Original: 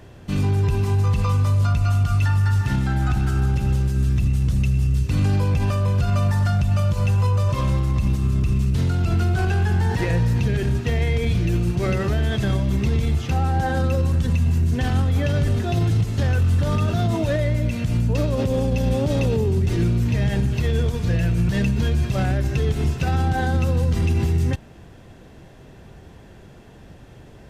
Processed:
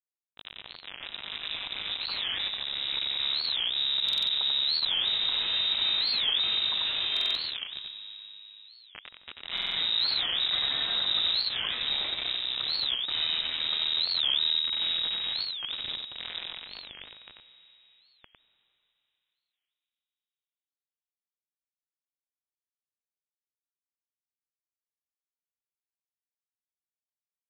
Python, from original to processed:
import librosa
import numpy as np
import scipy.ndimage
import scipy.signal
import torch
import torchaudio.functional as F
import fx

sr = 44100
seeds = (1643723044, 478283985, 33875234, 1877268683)

p1 = fx.doppler_pass(x, sr, speed_mps=17, closest_m=3.8, pass_at_s=8.36)
p2 = fx.hum_notches(p1, sr, base_hz=60, count=5)
p3 = fx.dynamic_eq(p2, sr, hz=200.0, q=0.78, threshold_db=-47.0, ratio=4.0, max_db=-3)
p4 = fx.over_compress(p3, sr, threshold_db=-41.0, ratio=-1.0)
p5 = fx.quant_companded(p4, sr, bits=2)
p6 = fx.air_absorb(p5, sr, metres=60.0)
p7 = p6 + fx.echo_single(p6, sr, ms=90, db=-4.5, dry=0)
p8 = fx.rev_freeverb(p7, sr, rt60_s=4.3, hf_ratio=0.6, predelay_ms=105, drr_db=13.5)
p9 = fx.freq_invert(p8, sr, carrier_hz=3800)
p10 = fx.buffer_glitch(p9, sr, at_s=(4.04, 7.12, 9.53), block=2048, repeats=4)
p11 = fx.record_warp(p10, sr, rpm=45.0, depth_cents=250.0)
y = p11 * 10.0 ** (-2.0 / 20.0)